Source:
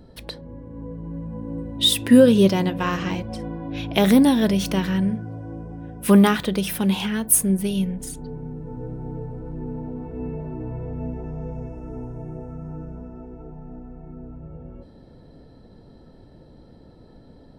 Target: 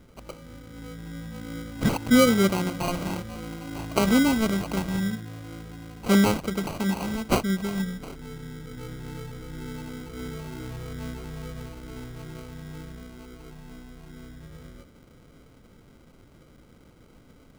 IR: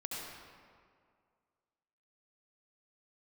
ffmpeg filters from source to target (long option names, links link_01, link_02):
-af "equalizer=frequency=2100:width_type=o:width=1.1:gain=4.5,acrusher=samples=25:mix=1:aa=0.000001,volume=-5.5dB"